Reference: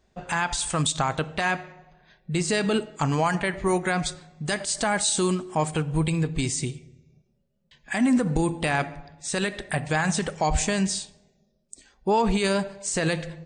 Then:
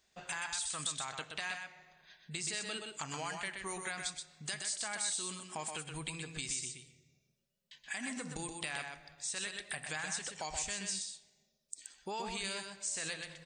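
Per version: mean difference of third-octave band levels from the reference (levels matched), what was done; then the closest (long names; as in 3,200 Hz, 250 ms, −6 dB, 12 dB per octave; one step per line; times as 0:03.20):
7.5 dB: tilt shelving filter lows −9.5 dB, about 1,200 Hz
downward compressor 2.5 to 1, threshold −35 dBFS, peak gain reduction 15 dB
low-shelf EQ 72 Hz −6 dB
on a send: single-tap delay 125 ms −5.5 dB
on the sum: level −6.5 dB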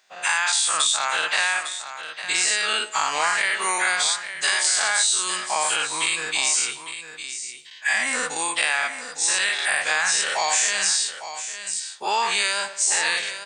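13.0 dB: every bin's largest magnitude spread in time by 120 ms
high-pass filter 1,400 Hz 12 dB per octave
downward compressor, threshold −26 dBFS, peak gain reduction 10 dB
single-tap delay 855 ms −11 dB
level +8 dB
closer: first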